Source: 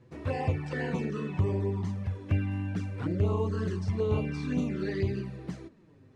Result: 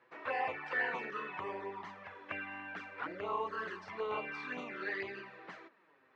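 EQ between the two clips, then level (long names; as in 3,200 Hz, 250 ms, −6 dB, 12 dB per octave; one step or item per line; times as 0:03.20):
high-pass filter 1,200 Hz 12 dB per octave
low-pass filter 1,800 Hz 12 dB per octave
+9.0 dB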